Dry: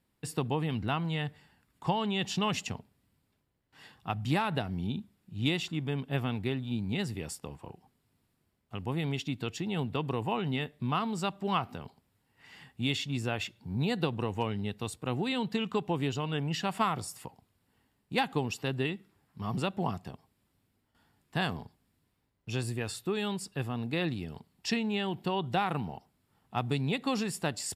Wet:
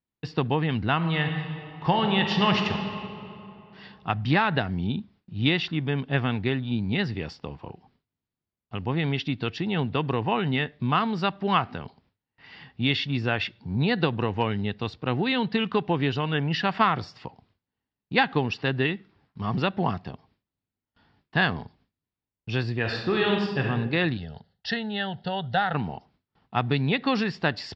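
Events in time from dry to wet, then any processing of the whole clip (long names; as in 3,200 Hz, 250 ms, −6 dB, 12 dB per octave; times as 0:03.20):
0:00.95–0:02.71: thrown reverb, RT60 2.9 s, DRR 3 dB
0:22.80–0:23.67: thrown reverb, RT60 1.2 s, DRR 0 dB
0:24.17–0:25.74: phaser with its sweep stopped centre 1,600 Hz, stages 8
whole clip: Butterworth low-pass 5,100 Hz 48 dB per octave; noise gate with hold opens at −59 dBFS; dynamic equaliser 1,700 Hz, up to +7 dB, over −52 dBFS, Q 2.3; level +6 dB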